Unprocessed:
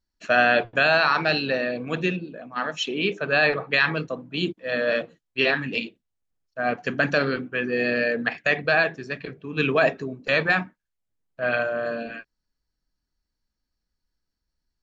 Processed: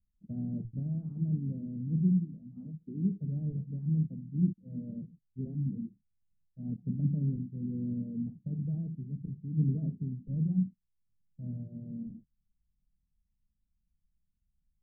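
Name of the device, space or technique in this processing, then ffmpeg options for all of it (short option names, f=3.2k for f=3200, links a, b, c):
the neighbour's flat through the wall: -af "lowpass=f=180:w=0.5412,lowpass=f=180:w=1.3066,equalizer=f=200:t=o:w=0.77:g=5,volume=3dB"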